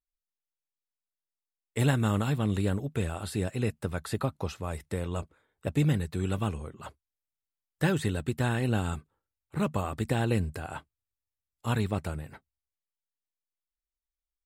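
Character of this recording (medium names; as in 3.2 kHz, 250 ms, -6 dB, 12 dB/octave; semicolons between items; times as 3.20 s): noise floor -92 dBFS; spectral tilt -6.5 dB/octave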